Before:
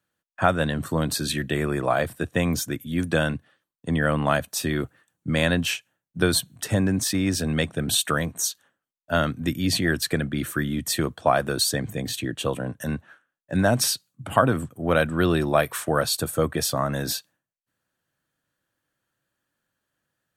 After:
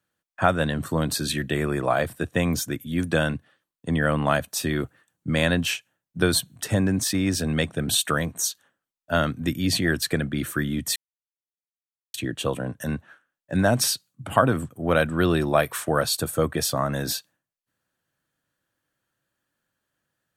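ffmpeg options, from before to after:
ffmpeg -i in.wav -filter_complex "[0:a]asplit=3[link_01][link_02][link_03];[link_01]atrim=end=10.96,asetpts=PTS-STARTPTS,afade=type=out:start_time=10.956:duration=0.004:curve=hsin[link_04];[link_02]atrim=start=10.96:end=12.14,asetpts=PTS-STARTPTS,volume=0[link_05];[link_03]atrim=start=12.14,asetpts=PTS-STARTPTS,afade=type=in:duration=0.004:curve=hsin[link_06];[link_04][link_05][link_06]concat=n=3:v=0:a=1" out.wav

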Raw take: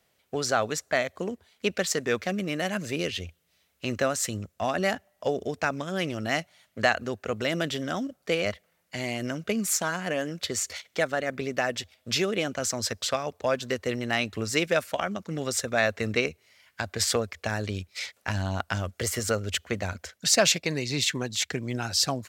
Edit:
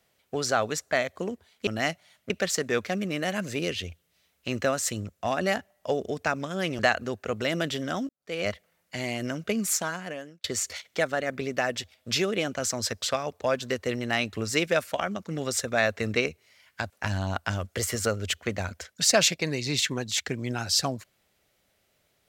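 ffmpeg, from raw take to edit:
ffmpeg -i in.wav -filter_complex "[0:a]asplit=7[link_01][link_02][link_03][link_04][link_05][link_06][link_07];[link_01]atrim=end=1.672[link_08];[link_02]atrim=start=6.158:end=6.792[link_09];[link_03]atrim=start=1.668:end=6.162[link_10];[link_04]atrim=start=6.788:end=8.09,asetpts=PTS-STARTPTS,afade=type=out:start_time=1.298:duration=0.004:curve=hsin[link_11];[link_05]atrim=start=8.09:end=10.44,asetpts=PTS-STARTPTS,afade=type=in:duration=0.37:curve=qua,afade=type=out:start_time=1.62:duration=0.73[link_12];[link_06]atrim=start=10.44:end=16.902,asetpts=PTS-STARTPTS,afade=type=in:duration=0.004:curve=hsin[link_13];[link_07]atrim=start=18.138[link_14];[link_08][link_09]acrossfade=duration=0.004:curve1=hsin:curve2=hsin[link_15];[link_15][link_10]acrossfade=duration=0.004:curve1=hsin:curve2=hsin[link_16];[link_11][link_12][link_13]concat=n=3:v=0:a=1[link_17];[link_16][link_17]acrossfade=duration=0.004:curve1=hsin:curve2=hsin[link_18];[link_18][link_14]acrossfade=duration=0.004:curve1=hsin:curve2=hsin" out.wav

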